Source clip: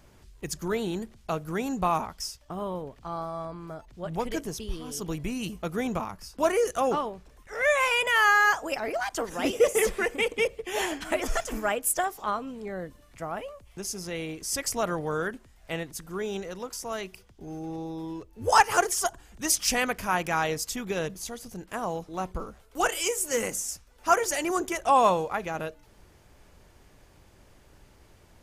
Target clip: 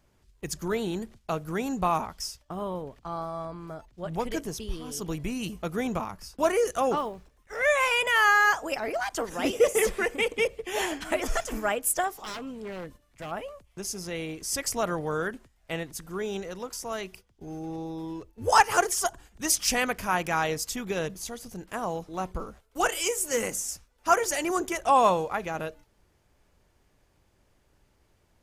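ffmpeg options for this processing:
ffmpeg -i in.wav -filter_complex "[0:a]asettb=1/sr,asplit=3[link_01][link_02][link_03];[link_01]atrim=end=6.974[link_04];[link_02]atrim=start=6.97:end=7.56,asetpts=PTS-STARTPTS,afade=type=in:duration=0.004:curve=qsin,afade=type=out:start_time=0.586:duration=0.004:curve=qsin,acrusher=bits=8:mode=log:mix=0:aa=0.000001[link_05];[link_03]atrim=start=7.556[link_06];[link_04][link_05]acrossfade=duration=0.004:curve1=hsin:curve2=qsin[link_07];[link_07][link_06]acrossfade=duration=0.004:curve1=qsin:curve2=hsin,asplit=3[link_08][link_09][link_10];[link_08]afade=type=out:start_time=12.12:duration=0.02[link_11];[link_09]aeval=exprs='0.0266*(abs(mod(val(0)/0.0266+3,4)-2)-1)':channel_layout=same,afade=type=in:start_time=12.12:duration=0.02,afade=type=out:start_time=13.3:duration=0.02[link_12];[link_10]afade=type=in:start_time=13.3:duration=0.02[link_13];[link_11][link_12][link_13]amix=inputs=3:normalize=0,agate=range=-10dB:threshold=-48dB:ratio=16:detection=peak" out.wav

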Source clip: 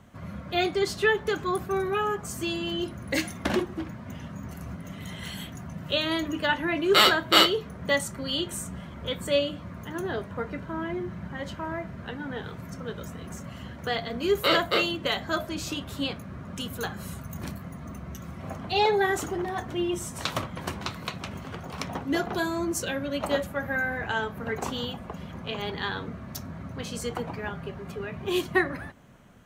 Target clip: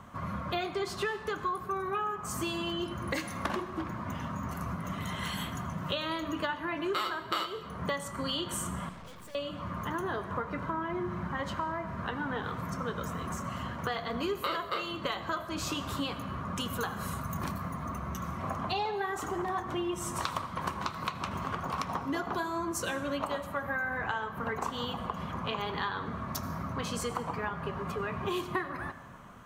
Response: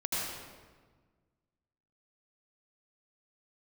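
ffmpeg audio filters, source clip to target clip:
-filter_complex "[0:a]equalizer=frequency=1100:width=2.1:gain=12.5,acompressor=threshold=-31dB:ratio=10,asettb=1/sr,asplit=3[link_01][link_02][link_03];[link_01]atrim=end=8.894[link_04];[link_02]atrim=start=8.89:end=9.35,asetpts=PTS-STARTPTS,afade=type=in:duration=0.004:curve=qsin,afade=type=out:start_time=0.456:duration=0.004:curve=qsin,aeval=exprs='(tanh(316*val(0)+0.75)-tanh(0.75))/316':channel_layout=same[link_05];[link_03]atrim=start=9.346[link_06];[link_04][link_05]acrossfade=duration=0.004:curve1=hsin:curve2=qsin[link_07];[link_07][link_06]acrossfade=duration=0.004:curve1=qsin:curve2=hsin,asplit=2[link_08][link_09];[1:a]atrim=start_sample=2205,afade=type=out:start_time=0.41:duration=0.01,atrim=end_sample=18522[link_10];[link_09][link_10]afir=irnorm=-1:irlink=0,volume=-17dB[link_11];[link_08][link_11]amix=inputs=2:normalize=0"

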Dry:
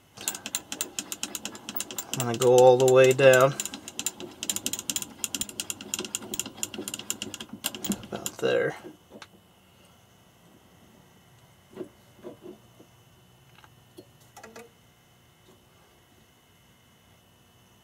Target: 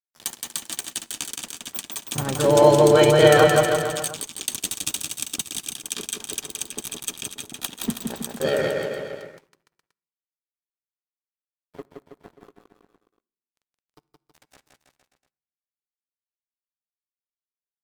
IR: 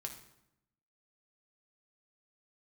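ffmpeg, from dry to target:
-filter_complex "[0:a]lowshelf=frequency=190:gain=3.5,asplit=3[link_01][link_02][link_03];[link_02]asetrate=33038,aresample=44100,atempo=1.33484,volume=-6dB[link_04];[link_03]asetrate=35002,aresample=44100,atempo=1.25992,volume=-9dB[link_05];[link_01][link_04][link_05]amix=inputs=3:normalize=0,aeval=exprs='sgn(val(0))*max(abs(val(0))-0.015,0)':channel_layout=same,asetrate=50951,aresample=44100,atempo=0.865537,aecho=1:1:170|323|460.7|584.6|696.2:0.631|0.398|0.251|0.158|0.1,asplit=2[link_06][link_07];[1:a]atrim=start_sample=2205,asetrate=48510,aresample=44100[link_08];[link_07][link_08]afir=irnorm=-1:irlink=0,volume=-12dB[link_09];[link_06][link_09]amix=inputs=2:normalize=0"

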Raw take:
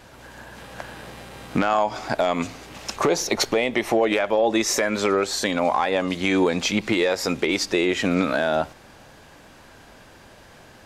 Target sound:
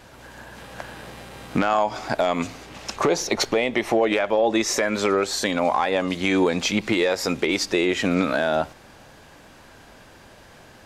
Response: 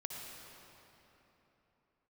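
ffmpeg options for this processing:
-filter_complex "[0:a]asettb=1/sr,asplit=3[link_01][link_02][link_03];[link_01]atrim=end=2.634[link_04];[link_02]atrim=start=2.63:end=4.88,asetpts=PTS-STARTPTS,afade=type=in:duration=0.004:curve=qsin,afade=type=out:start_time=2.246:duration=0.004:curve=qsin,highshelf=frequency=11000:gain=-8[link_05];[link_03]atrim=start=4.876[link_06];[link_04][link_05]acrossfade=duration=0.004:curve1=hsin:curve2=qsin[link_07];[link_07][link_06]acrossfade=duration=0.004:curve1=qsin:curve2=hsin"

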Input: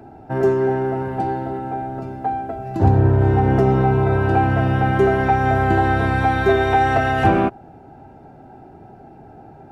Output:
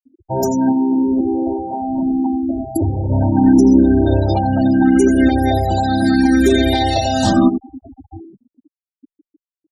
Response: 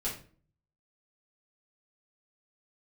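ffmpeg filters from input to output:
-filter_complex "[0:a]aecho=1:1:3.4:0.68,asoftclip=type=hard:threshold=-11dB,aecho=1:1:88|881:0.398|0.1,alimiter=limit=-12.5dB:level=0:latency=1:release=289,asplit=3[link_01][link_02][link_03];[link_01]afade=type=out:start_time=0.71:duration=0.02[link_04];[link_02]acompressor=threshold=-22dB:ratio=5,afade=type=in:start_time=0.71:duration=0.02,afade=type=out:start_time=3.09:duration=0.02[link_05];[link_03]afade=type=in:start_time=3.09:duration=0.02[link_06];[link_04][link_05][link_06]amix=inputs=3:normalize=0,bass=frequency=250:gain=4,treble=frequency=4000:gain=8,aexciter=amount=8.1:drive=3.4:freq=3300,afftfilt=real='re*gte(hypot(re,im),0.112)':imag='im*gte(hypot(re,im),0.112)':win_size=1024:overlap=0.75,adynamicequalizer=threshold=0.0158:dfrequency=260:dqfactor=1.7:tfrequency=260:tqfactor=1.7:attack=5:release=100:ratio=0.375:range=4:mode=boostabove:tftype=bell,asplit=2[link_07][link_08];[link_08]afreqshift=0.75[link_09];[link_07][link_09]amix=inputs=2:normalize=1,volume=4.5dB"

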